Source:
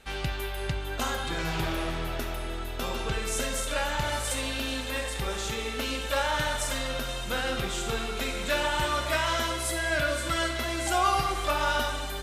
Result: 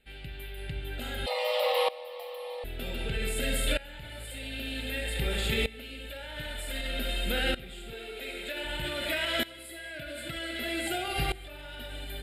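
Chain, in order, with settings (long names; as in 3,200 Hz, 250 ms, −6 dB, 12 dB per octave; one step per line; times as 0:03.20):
hum removal 65.52 Hz, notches 13
0:07.93–0:08.65: low shelf with overshoot 260 Hz −11.5 dB, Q 1.5
brickwall limiter −23 dBFS, peak gain reduction 9.5 dB
phaser with its sweep stopped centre 2,600 Hz, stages 4
0:01.26–0:02.64: frequency shifter +450 Hz
tremolo with a ramp in dB swelling 0.53 Hz, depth 19 dB
level +8.5 dB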